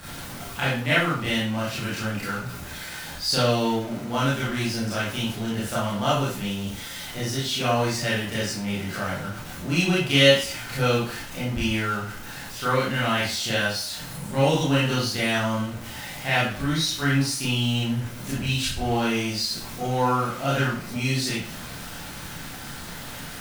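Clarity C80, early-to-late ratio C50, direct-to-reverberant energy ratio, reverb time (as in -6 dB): 7.0 dB, 1.5 dB, -9.0 dB, 0.45 s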